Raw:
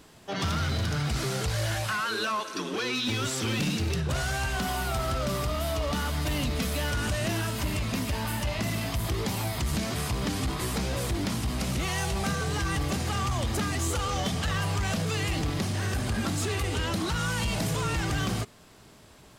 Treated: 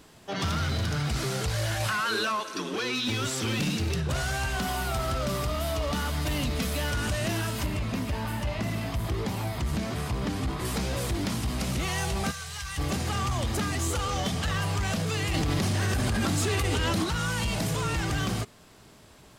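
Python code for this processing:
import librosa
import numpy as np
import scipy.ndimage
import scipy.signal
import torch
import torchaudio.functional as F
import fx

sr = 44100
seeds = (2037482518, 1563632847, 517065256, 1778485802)

y = fx.env_flatten(x, sr, amount_pct=100, at=(1.8, 2.36))
y = fx.high_shelf(y, sr, hz=3000.0, db=-8.0, at=(7.66, 10.65))
y = fx.tone_stack(y, sr, knobs='10-0-10', at=(12.3, 12.77), fade=0.02)
y = fx.env_flatten(y, sr, amount_pct=100, at=(15.34, 17.04))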